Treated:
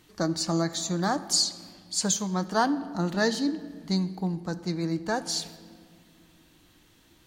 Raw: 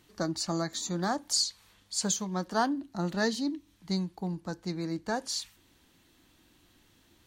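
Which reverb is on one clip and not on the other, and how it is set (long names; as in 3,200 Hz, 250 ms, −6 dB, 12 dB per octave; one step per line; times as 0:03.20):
rectangular room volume 3,400 cubic metres, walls mixed, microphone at 0.55 metres
level +3.5 dB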